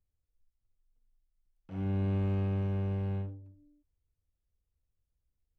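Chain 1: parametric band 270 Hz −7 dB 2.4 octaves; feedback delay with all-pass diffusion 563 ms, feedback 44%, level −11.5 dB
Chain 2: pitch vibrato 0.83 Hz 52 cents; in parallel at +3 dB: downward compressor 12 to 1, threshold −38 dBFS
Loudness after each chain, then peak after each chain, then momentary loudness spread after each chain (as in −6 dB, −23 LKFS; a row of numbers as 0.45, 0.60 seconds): −37.5, −30.0 LKFS; −26.5, −21.0 dBFS; 18, 10 LU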